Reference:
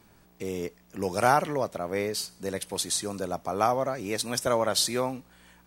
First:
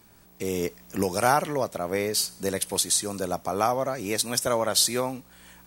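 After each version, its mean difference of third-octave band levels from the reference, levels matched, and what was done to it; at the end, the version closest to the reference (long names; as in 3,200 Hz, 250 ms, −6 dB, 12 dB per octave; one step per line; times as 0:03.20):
2.5 dB: camcorder AGC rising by 8 dB per second
high-shelf EQ 5,900 Hz +8 dB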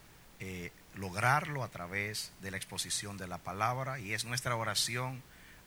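5.0 dB: octave-band graphic EQ 125/250/500/2,000 Hz +11/−6/−8/+11 dB
background noise pink −51 dBFS
level −8 dB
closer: first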